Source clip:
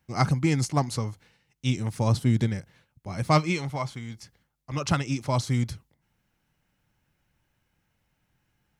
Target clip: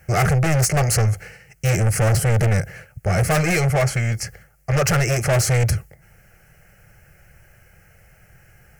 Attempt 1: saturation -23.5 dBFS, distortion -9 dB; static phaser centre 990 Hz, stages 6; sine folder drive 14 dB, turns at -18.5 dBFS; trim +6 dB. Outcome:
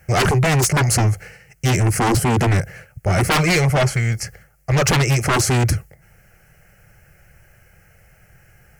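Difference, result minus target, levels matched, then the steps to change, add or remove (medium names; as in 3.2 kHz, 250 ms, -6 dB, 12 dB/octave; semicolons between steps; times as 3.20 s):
saturation: distortion -6 dB
change: saturation -34 dBFS, distortion -3 dB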